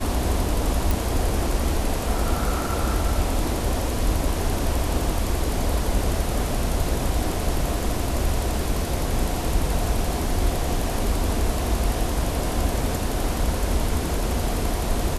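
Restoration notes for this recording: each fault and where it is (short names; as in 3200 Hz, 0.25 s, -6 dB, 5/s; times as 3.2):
0.91 pop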